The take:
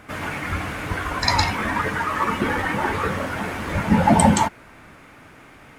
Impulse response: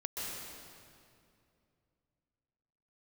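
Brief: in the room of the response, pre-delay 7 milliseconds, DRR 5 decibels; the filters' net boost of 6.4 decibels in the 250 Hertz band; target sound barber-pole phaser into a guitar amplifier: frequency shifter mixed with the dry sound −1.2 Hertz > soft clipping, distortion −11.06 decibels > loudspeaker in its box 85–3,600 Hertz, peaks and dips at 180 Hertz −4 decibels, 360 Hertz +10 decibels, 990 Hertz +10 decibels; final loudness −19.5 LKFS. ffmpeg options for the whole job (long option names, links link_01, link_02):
-filter_complex "[0:a]equalizer=frequency=250:width_type=o:gain=7.5,asplit=2[link_01][link_02];[1:a]atrim=start_sample=2205,adelay=7[link_03];[link_02][link_03]afir=irnorm=-1:irlink=0,volume=-7.5dB[link_04];[link_01][link_04]amix=inputs=2:normalize=0,asplit=2[link_05][link_06];[link_06]afreqshift=-1.2[link_07];[link_05][link_07]amix=inputs=2:normalize=1,asoftclip=threshold=-15.5dB,highpass=85,equalizer=frequency=180:width_type=q:width=4:gain=-4,equalizer=frequency=360:width_type=q:width=4:gain=10,equalizer=frequency=990:width_type=q:width=4:gain=10,lowpass=frequency=3600:width=0.5412,lowpass=frequency=3600:width=1.3066,volume=2.5dB"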